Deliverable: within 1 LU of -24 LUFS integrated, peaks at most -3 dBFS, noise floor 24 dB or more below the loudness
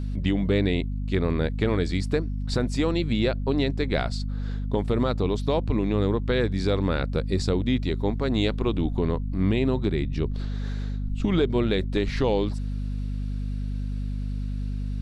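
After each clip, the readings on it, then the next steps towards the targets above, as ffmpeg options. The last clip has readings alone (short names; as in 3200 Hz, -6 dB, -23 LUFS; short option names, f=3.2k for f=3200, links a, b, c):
hum 50 Hz; harmonics up to 250 Hz; hum level -26 dBFS; loudness -26.0 LUFS; peak -10.5 dBFS; loudness target -24.0 LUFS
-> -af "bandreject=f=50:t=h:w=4,bandreject=f=100:t=h:w=4,bandreject=f=150:t=h:w=4,bandreject=f=200:t=h:w=4,bandreject=f=250:t=h:w=4"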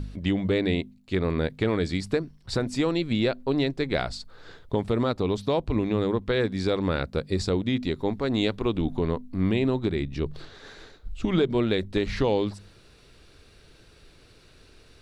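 hum none; loudness -27.0 LUFS; peak -11.0 dBFS; loudness target -24.0 LUFS
-> -af "volume=3dB"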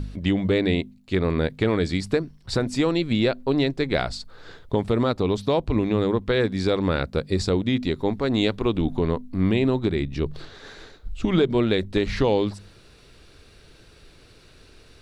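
loudness -24.0 LUFS; peak -8.0 dBFS; noise floor -52 dBFS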